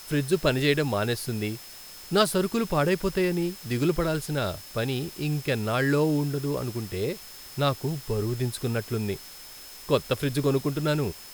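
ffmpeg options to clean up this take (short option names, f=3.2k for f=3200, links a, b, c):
-af "bandreject=f=5.2k:w=30,afftdn=nr=28:nf=-44"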